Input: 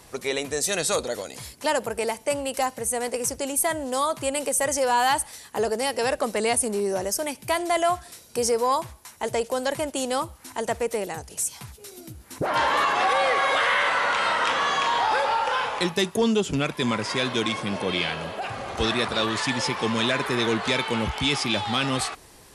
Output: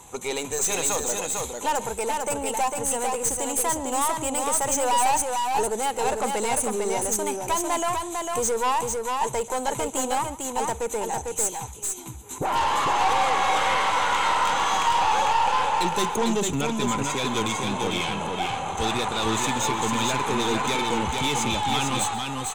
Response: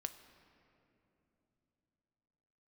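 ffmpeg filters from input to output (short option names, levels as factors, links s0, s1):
-af "superequalizer=8b=0.708:9b=2.24:11b=0.562:14b=0.251:15b=2.82,asoftclip=type=tanh:threshold=0.106,aeval=exprs='0.106*(cos(1*acos(clip(val(0)/0.106,-1,1)))-cos(1*PI/2))+0.0168*(cos(2*acos(clip(val(0)/0.106,-1,1)))-cos(2*PI/2))':c=same,aecho=1:1:136|450:0.126|0.631"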